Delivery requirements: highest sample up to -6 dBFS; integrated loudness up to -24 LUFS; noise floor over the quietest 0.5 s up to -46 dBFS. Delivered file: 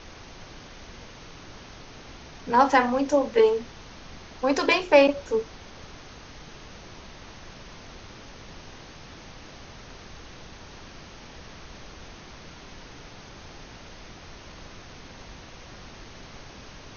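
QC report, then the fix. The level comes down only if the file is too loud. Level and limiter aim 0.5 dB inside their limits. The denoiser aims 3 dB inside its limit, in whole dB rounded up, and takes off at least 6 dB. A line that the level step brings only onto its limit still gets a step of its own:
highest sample -4.0 dBFS: fail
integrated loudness -22.0 LUFS: fail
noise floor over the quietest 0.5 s -45 dBFS: fail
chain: trim -2.5 dB

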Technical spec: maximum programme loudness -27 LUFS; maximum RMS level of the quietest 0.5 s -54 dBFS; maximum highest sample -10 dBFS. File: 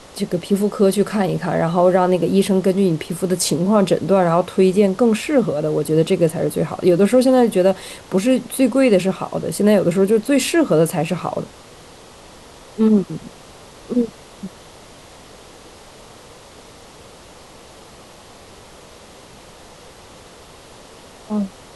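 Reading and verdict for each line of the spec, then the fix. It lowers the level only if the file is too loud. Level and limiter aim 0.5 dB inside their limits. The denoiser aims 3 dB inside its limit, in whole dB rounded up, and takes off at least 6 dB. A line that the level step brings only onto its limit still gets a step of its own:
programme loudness -17.5 LUFS: fail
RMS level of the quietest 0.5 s -42 dBFS: fail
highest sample -3.5 dBFS: fail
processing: noise reduction 6 dB, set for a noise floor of -42 dBFS; trim -10 dB

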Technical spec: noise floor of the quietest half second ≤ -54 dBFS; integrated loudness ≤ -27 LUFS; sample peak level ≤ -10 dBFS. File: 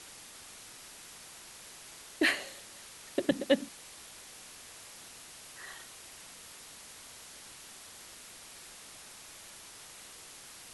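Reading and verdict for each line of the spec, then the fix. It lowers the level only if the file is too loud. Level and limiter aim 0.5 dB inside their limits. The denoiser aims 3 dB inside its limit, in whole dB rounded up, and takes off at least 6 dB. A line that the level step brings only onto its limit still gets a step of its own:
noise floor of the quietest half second -51 dBFS: fail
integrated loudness -39.5 LUFS: pass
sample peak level -12.5 dBFS: pass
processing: noise reduction 6 dB, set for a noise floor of -51 dBFS

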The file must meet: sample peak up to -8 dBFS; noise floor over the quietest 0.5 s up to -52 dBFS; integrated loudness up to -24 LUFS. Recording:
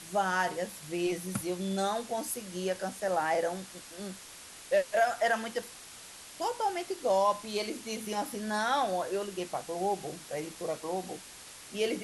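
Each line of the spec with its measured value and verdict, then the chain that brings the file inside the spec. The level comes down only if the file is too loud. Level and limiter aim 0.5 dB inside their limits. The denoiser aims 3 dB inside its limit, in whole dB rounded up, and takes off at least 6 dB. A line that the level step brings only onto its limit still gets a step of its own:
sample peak -16.0 dBFS: pass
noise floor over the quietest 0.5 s -49 dBFS: fail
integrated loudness -32.5 LUFS: pass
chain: noise reduction 6 dB, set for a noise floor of -49 dBFS

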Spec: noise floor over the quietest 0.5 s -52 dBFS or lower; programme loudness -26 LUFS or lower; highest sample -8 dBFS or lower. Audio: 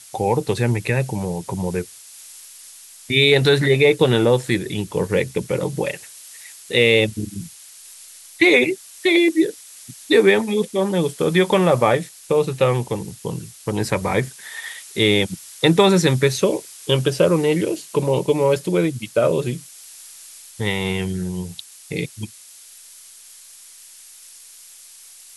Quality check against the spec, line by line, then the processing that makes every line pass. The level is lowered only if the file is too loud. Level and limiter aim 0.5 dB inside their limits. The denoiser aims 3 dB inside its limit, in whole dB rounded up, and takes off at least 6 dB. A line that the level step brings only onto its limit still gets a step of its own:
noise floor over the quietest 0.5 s -44 dBFS: fail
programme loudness -19.0 LUFS: fail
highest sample -2.5 dBFS: fail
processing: noise reduction 6 dB, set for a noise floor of -44 dBFS; trim -7.5 dB

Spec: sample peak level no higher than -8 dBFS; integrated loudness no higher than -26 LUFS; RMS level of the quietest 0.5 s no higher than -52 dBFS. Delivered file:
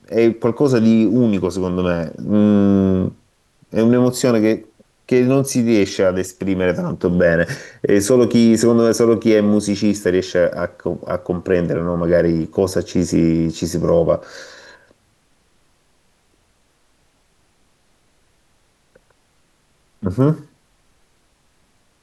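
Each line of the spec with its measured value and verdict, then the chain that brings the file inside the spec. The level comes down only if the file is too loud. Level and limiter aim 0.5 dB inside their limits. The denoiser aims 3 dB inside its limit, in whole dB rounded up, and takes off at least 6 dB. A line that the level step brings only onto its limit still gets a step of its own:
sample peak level -4.0 dBFS: fail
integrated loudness -17.0 LUFS: fail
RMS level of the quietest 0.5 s -60 dBFS: pass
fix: trim -9.5 dB

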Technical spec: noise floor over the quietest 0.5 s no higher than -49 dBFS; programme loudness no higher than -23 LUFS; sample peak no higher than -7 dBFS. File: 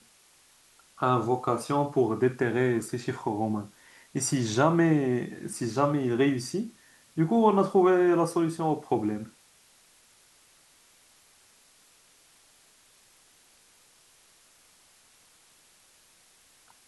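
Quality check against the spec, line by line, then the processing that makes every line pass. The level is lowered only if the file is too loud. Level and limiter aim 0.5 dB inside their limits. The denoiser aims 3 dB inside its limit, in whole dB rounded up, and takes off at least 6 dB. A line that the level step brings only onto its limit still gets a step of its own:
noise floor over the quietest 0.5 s -60 dBFS: pass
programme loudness -26.5 LUFS: pass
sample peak -9.0 dBFS: pass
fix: none needed

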